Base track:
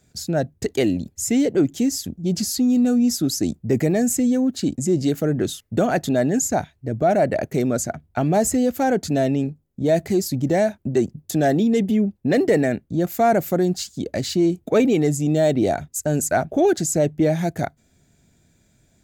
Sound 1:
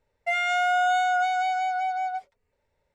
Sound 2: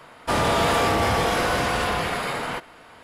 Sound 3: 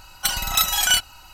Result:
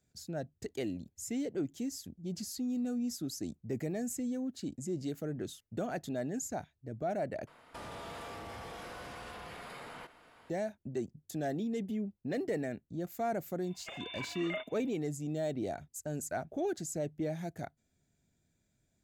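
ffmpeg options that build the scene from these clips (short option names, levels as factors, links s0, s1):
-filter_complex "[0:a]volume=0.141[s0];[2:a]acompressor=threshold=0.0316:ratio=6:attack=3.2:release=140:knee=1:detection=peak[s1];[3:a]lowpass=f=3100:t=q:w=0.5098,lowpass=f=3100:t=q:w=0.6013,lowpass=f=3100:t=q:w=0.9,lowpass=f=3100:t=q:w=2.563,afreqshift=-3600[s2];[s0]asplit=2[s3][s4];[s3]atrim=end=7.474[s5];[s1]atrim=end=3.03,asetpts=PTS-STARTPTS,volume=0.224[s6];[s4]atrim=start=10.496[s7];[s2]atrim=end=1.33,asetpts=PTS-STARTPTS,volume=0.133,afade=t=in:d=0.004:c=hsin,afade=t=out:st=1.326:d=0.004:c=hsin,adelay=13630[s8];[s5][s6]acrossfade=d=0.004:c1=hsin:c2=hsin[s9];[s9][s7]acrossfade=d=0.004:c1=hsin:c2=hsin[s10];[s10][s8]amix=inputs=2:normalize=0"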